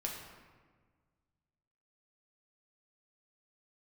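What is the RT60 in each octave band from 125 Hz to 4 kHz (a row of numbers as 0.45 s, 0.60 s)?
2.3 s, 1.9 s, 1.6 s, 1.5 s, 1.3 s, 0.90 s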